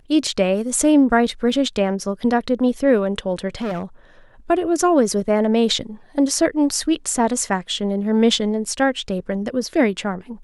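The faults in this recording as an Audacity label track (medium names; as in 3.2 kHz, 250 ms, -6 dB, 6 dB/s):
3.610000	3.830000	clipped -21 dBFS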